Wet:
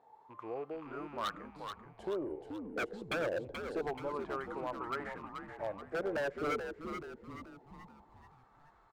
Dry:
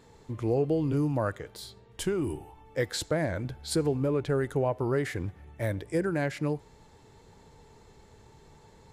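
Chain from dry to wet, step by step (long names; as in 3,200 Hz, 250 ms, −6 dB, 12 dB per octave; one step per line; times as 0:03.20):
loose part that buzzes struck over −31 dBFS, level −37 dBFS
dynamic equaliser 390 Hz, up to +4 dB, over −40 dBFS, Q 0.8
LFO wah 0.26 Hz 430–1,300 Hz, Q 6.4
wave folding −34.5 dBFS
echo with shifted repeats 430 ms, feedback 49%, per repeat −88 Hz, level −7 dB
level +5.5 dB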